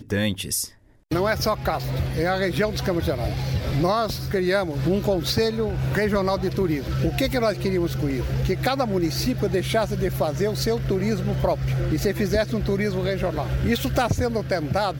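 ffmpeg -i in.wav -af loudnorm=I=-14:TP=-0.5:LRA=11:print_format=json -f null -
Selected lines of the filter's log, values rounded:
"input_i" : "-23.7",
"input_tp" : "-8.4",
"input_lra" : "0.5",
"input_thresh" : "-33.8",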